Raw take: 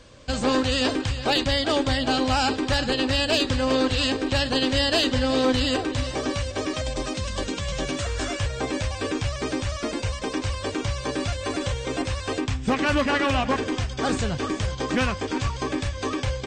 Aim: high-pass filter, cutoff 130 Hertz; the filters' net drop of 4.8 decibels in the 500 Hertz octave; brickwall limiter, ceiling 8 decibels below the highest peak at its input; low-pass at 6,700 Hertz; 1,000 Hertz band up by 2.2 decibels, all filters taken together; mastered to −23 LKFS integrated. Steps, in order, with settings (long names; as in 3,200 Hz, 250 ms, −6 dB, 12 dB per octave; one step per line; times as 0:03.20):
high-pass filter 130 Hz
low-pass filter 6,700 Hz
parametric band 500 Hz −7 dB
parametric band 1,000 Hz +5 dB
level +5.5 dB
brickwall limiter −12.5 dBFS